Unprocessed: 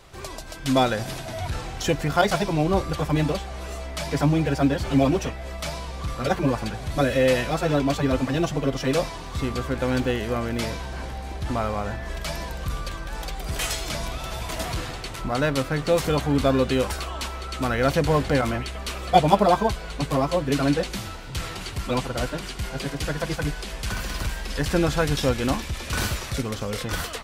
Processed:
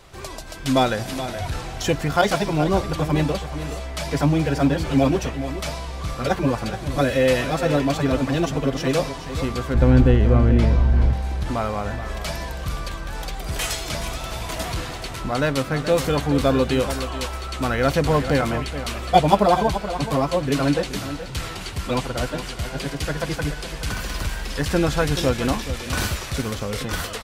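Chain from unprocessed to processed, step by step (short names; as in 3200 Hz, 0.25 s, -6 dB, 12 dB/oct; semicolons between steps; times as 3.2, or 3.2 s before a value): 9.74–11.13 RIAA curve playback; echo 0.426 s -11.5 dB; gain +1.5 dB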